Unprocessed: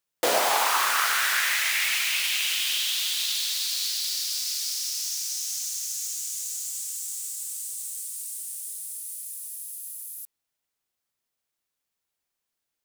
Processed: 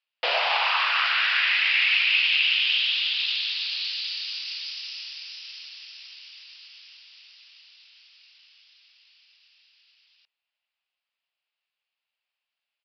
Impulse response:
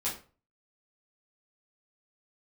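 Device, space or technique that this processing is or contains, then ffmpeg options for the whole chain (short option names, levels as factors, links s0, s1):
musical greeting card: -af "aresample=11025,aresample=44100,highpass=f=570:w=0.5412,highpass=f=570:w=1.3066,equalizer=f=2700:t=o:w=0.59:g=12,volume=0.75"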